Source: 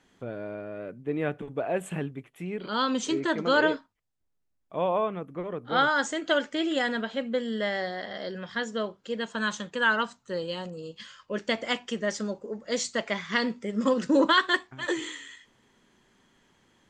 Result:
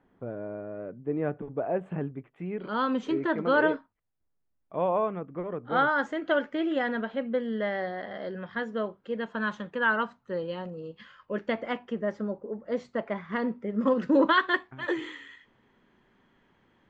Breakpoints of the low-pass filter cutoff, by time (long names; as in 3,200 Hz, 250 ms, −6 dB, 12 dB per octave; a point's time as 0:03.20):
0:01.92 1,200 Hz
0:02.59 1,900 Hz
0:11.42 1,900 Hz
0:12.05 1,200 Hz
0:13.51 1,200 Hz
0:14.11 2,400 Hz